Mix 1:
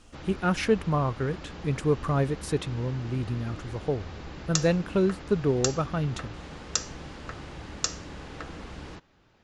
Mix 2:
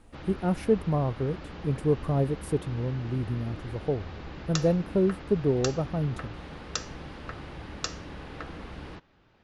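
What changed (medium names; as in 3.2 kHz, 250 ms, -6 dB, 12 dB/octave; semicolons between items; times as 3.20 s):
speech: add high-order bell 2.9 kHz -14 dB 3 oct; background: add low-pass 4.4 kHz 12 dB/octave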